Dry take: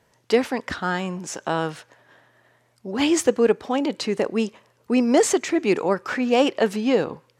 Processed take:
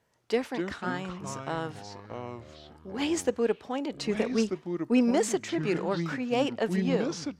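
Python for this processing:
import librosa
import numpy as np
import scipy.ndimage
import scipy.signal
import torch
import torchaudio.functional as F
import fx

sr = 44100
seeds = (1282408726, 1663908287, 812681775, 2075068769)

y = fx.comb(x, sr, ms=4.3, depth=0.88, at=(4.0, 5.11))
y = fx.echo_pitch(y, sr, ms=141, semitones=-5, count=3, db_per_echo=-6.0)
y = fx.cheby_harmonics(y, sr, harmonics=(7,), levels_db=(-34,), full_scale_db=-4.5)
y = y * librosa.db_to_amplitude(-8.5)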